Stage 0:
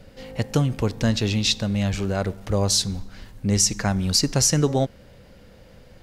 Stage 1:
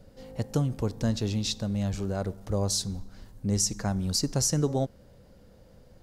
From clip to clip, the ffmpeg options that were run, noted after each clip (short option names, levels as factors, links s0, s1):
-af "equalizer=f=2400:w=0.91:g=-9.5,volume=0.531"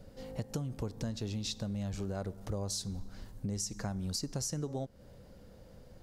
-af "acompressor=threshold=0.02:ratio=6"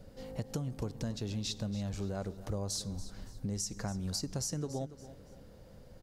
-af "aecho=1:1:283|566|849:0.178|0.0622|0.0218"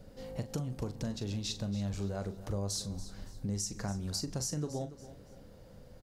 -filter_complex "[0:a]asplit=2[s0][s1];[s1]adelay=40,volume=0.299[s2];[s0][s2]amix=inputs=2:normalize=0"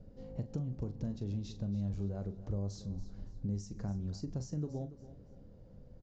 -af "tiltshelf=f=690:g=8.5,volume=0.398" -ar 16000 -c:a libvorbis -b:a 96k